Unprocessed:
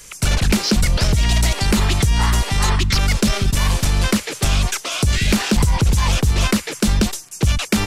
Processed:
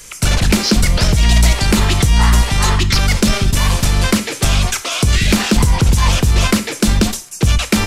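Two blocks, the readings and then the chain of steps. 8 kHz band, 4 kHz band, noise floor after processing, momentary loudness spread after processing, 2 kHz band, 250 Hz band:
+4.0 dB, +4.0 dB, -32 dBFS, 4 LU, +4.0 dB, +3.5 dB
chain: gated-style reverb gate 160 ms falling, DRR 9.5 dB; trim +3.5 dB

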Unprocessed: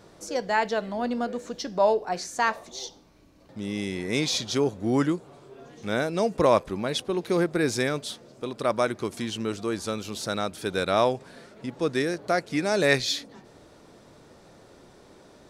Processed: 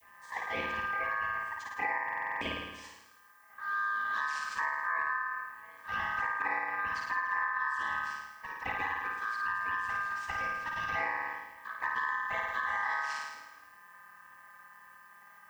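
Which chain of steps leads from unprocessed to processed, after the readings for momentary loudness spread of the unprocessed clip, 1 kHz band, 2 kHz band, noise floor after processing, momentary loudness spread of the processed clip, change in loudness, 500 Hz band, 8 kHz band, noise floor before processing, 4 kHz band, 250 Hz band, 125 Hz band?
12 LU, -3.0 dB, +1.5 dB, -57 dBFS, 17 LU, -7.0 dB, -22.5 dB, -18.5 dB, -53 dBFS, -15.0 dB, -24.0 dB, -20.5 dB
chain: vocoder on a held chord minor triad, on B2; touch-sensitive flanger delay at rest 5.5 ms, full sweep at -21 dBFS; flutter echo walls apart 9.3 m, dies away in 1 s; added noise violet -65 dBFS; bass shelf 220 Hz -5.5 dB; compression 6:1, threshold -27 dBFS, peak gain reduction 11.5 dB; ring modulator 1.4 kHz; buffer glitch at 2.04 s, samples 2048, times 7

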